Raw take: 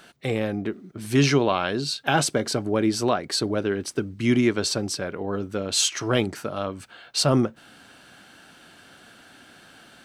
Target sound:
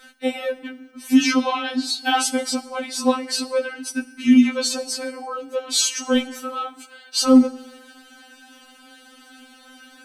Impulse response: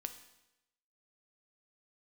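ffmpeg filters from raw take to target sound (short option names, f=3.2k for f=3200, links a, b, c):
-filter_complex "[0:a]asplit=2[a][b];[1:a]atrim=start_sample=2205,asetrate=33957,aresample=44100,highshelf=f=7.8k:g=6.5[c];[b][c]afir=irnorm=-1:irlink=0,volume=-2dB[d];[a][d]amix=inputs=2:normalize=0,afftfilt=real='re*3.46*eq(mod(b,12),0)':imag='im*3.46*eq(mod(b,12),0)':win_size=2048:overlap=0.75"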